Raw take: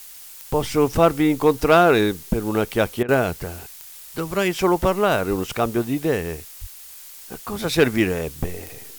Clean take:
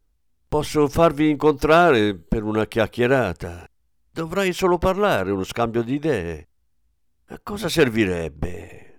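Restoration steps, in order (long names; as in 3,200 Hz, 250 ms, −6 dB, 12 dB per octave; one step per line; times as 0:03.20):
click removal
0:05.29–0:05.41: high-pass filter 140 Hz 24 dB per octave
0:06.60–0:06.72: high-pass filter 140 Hz 24 dB per octave
repair the gap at 0:03.03, 54 ms
broadband denoise 23 dB, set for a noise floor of −41 dBFS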